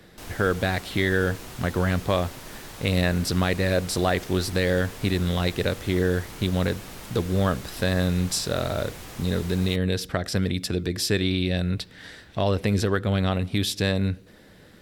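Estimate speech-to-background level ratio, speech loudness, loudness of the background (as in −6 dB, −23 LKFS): 15.0 dB, −25.5 LKFS, −40.5 LKFS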